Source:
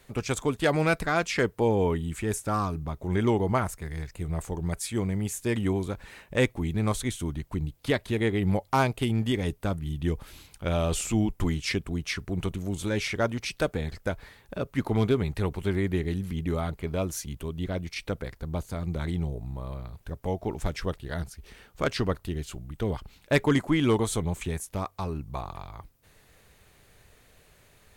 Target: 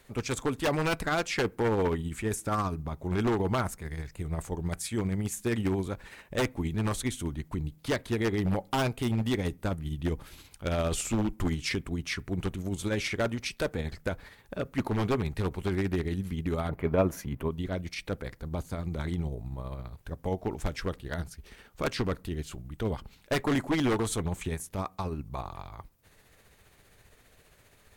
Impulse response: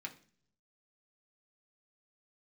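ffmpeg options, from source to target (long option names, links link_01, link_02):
-filter_complex "[0:a]tremolo=f=15:d=0.38,aeval=exprs='0.0944*(abs(mod(val(0)/0.0944+3,4)-2)-1)':channel_layout=same,asettb=1/sr,asplit=3[link_01][link_02][link_03];[link_01]atrim=end=16.694[link_04];[link_02]atrim=start=16.69:end=17.51,asetpts=PTS-STARTPTS,afade=type=in:duration=0.004:curve=qsin,afade=type=out:start_time=0.816:duration=0.004:curve=qsin,equalizer=frequency=125:width_type=o:width=1:gain=5,equalizer=frequency=250:width_type=o:width=1:gain=4,equalizer=frequency=500:width_type=o:width=1:gain=5,equalizer=frequency=1000:width_type=o:width=1:gain=7,equalizer=frequency=2000:width_type=o:width=1:gain=5,equalizer=frequency=4000:width_type=o:width=1:gain=-6,equalizer=frequency=8000:width_type=o:width=1:gain=-9[link_05];[link_03]atrim=start=17.506[link_06];[link_04][link_05]acrossfade=duration=0.004:curve1=hsin:curve2=qsin[link_07];[link_07][link_06]acrossfade=duration=0.004:curve1=qsin:curve2=hsin,asplit=2[link_08][link_09];[1:a]atrim=start_sample=2205,lowpass=2200[link_10];[link_09][link_10]afir=irnorm=-1:irlink=0,volume=-14dB[link_11];[link_08][link_11]amix=inputs=2:normalize=0"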